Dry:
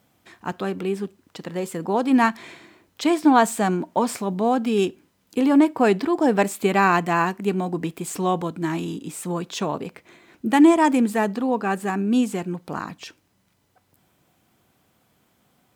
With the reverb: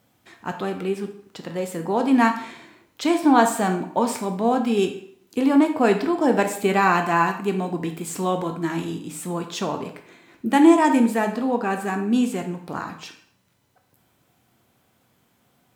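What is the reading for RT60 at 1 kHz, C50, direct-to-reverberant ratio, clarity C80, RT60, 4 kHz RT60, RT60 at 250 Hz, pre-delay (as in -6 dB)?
0.60 s, 9.5 dB, 5.0 dB, 12.5 dB, 0.60 s, 0.55 s, 0.65 s, 7 ms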